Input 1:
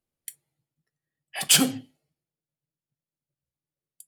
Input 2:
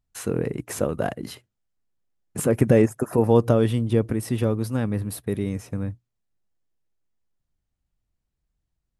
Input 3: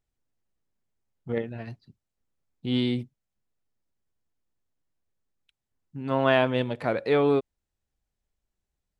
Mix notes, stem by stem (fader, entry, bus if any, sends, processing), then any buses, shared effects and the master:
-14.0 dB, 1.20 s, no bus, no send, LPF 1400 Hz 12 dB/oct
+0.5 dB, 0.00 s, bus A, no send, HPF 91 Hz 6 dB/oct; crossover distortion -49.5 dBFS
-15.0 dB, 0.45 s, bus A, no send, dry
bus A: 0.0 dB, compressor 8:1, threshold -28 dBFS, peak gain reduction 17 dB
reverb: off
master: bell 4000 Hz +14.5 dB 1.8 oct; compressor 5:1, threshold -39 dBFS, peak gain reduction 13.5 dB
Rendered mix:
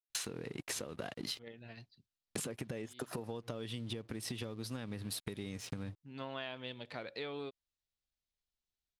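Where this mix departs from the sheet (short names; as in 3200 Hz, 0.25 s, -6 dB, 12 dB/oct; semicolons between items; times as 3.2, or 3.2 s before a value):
stem 1: muted; stem 2 +0.5 dB -> +9.0 dB; stem 3: entry 0.45 s -> 0.10 s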